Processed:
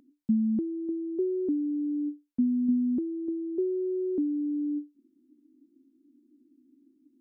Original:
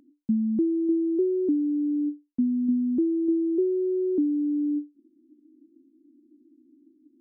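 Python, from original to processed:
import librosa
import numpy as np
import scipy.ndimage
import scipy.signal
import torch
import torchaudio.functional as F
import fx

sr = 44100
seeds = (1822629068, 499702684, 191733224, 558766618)

y = fx.peak_eq(x, sr, hz=330.0, db=-8.5, octaves=0.33)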